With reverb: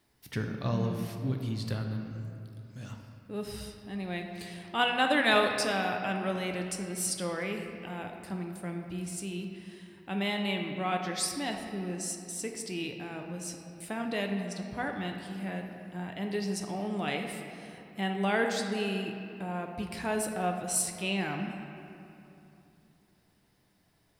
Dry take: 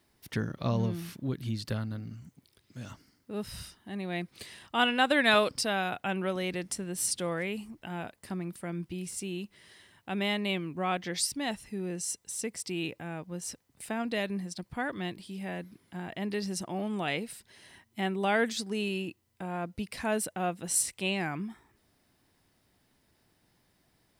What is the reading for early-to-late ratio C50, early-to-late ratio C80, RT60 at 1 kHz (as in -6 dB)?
4.5 dB, 6.0 dB, 2.8 s